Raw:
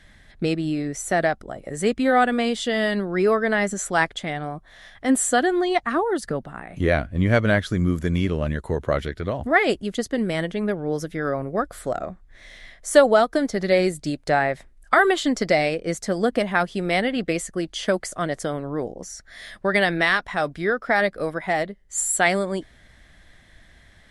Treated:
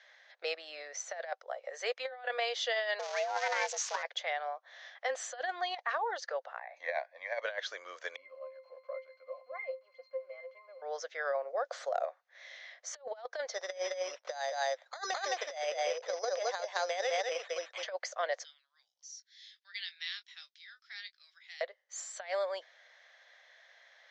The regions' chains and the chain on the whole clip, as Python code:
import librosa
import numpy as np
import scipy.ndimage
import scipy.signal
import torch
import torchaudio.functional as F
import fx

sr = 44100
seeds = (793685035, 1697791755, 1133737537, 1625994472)

y = fx.chain(x, sr, fx.crossing_spikes(level_db=-16.5),
    fx.ring_mod(carrier_hz=280.0), at=(2.99, 4.03))
y = fx.chain(y, sr, fx.high_shelf(hz=4100.0, db=-8.0),
    fx.fixed_phaser(hz=2000.0, stages=8), at=(6.59, 7.42))
y = fx.chain(y, sr, fx.crossing_spikes(level_db=-21.0),
    fx.bandpass_edges(low_hz=240.0, high_hz=3000.0),
    fx.octave_resonator(note='C', decay_s=0.18), at=(8.16, 10.82))
y = fx.chain(y, sr, fx.peak_eq(hz=2200.0, db=-7.5, octaves=2.6),
    fx.env_flatten(amount_pct=50), at=(11.36, 12.05))
y = fx.chain(y, sr, fx.lowpass(hz=1600.0, slope=6),
    fx.echo_single(ms=213, db=-3.5),
    fx.resample_bad(factor=8, down='none', up='hold'), at=(13.54, 17.83))
y = fx.chain(y, sr, fx.ladder_highpass(hz=2800.0, resonance_pct=25),
    fx.doubler(ms=22.0, db=-11), at=(18.44, 21.61))
y = scipy.signal.sosfilt(scipy.signal.cheby1(5, 1.0, [510.0, 6400.0], 'bandpass', fs=sr, output='sos'), y)
y = fx.dynamic_eq(y, sr, hz=1300.0, q=7.5, threshold_db=-44.0, ratio=4.0, max_db=-6)
y = fx.over_compress(y, sr, threshold_db=-26.0, ratio=-0.5)
y = y * librosa.db_to_amplitude(-7.5)